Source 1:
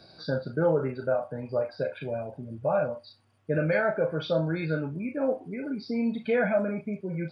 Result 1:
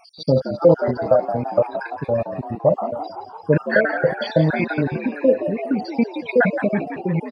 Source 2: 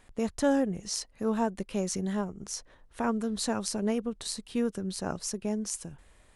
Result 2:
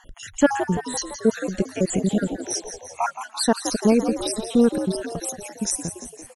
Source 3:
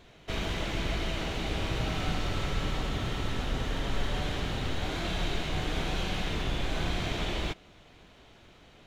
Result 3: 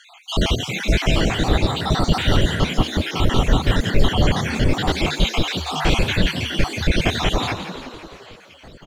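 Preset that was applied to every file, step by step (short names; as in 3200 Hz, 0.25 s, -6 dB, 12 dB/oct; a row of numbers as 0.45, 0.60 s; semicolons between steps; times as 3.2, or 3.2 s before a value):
random spectral dropouts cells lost 66%; frequency-shifting echo 0.17 s, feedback 62%, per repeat +74 Hz, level -10.5 dB; normalise peaks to -2 dBFS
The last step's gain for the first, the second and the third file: +12.0, +12.0, +16.0 dB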